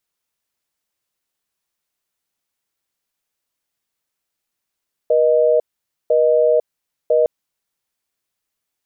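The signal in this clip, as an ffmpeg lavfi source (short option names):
-f lavfi -i "aevalsrc='0.2*(sin(2*PI*480*t)+sin(2*PI*620*t))*clip(min(mod(t,1),0.5-mod(t,1))/0.005,0,1)':d=2.16:s=44100"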